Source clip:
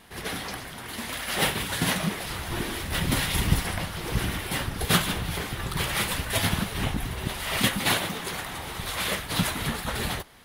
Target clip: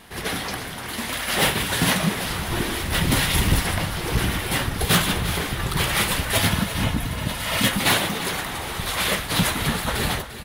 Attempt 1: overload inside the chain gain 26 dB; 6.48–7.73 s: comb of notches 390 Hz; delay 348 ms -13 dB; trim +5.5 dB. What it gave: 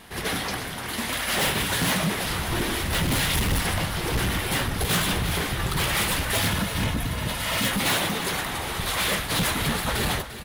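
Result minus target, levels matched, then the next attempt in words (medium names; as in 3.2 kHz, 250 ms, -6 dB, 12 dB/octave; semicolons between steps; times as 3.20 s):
overload inside the chain: distortion +8 dB
overload inside the chain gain 18 dB; 6.48–7.73 s: comb of notches 390 Hz; delay 348 ms -13 dB; trim +5.5 dB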